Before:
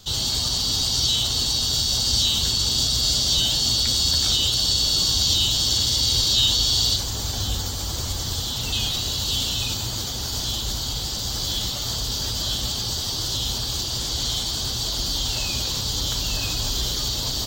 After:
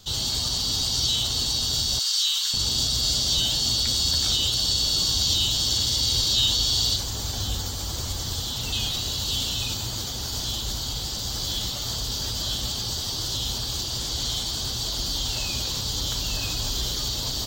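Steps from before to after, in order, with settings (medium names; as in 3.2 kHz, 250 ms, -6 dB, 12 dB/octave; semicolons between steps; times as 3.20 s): 1.99–2.54 s: high-pass 1.1 kHz 24 dB/octave; trim -2.5 dB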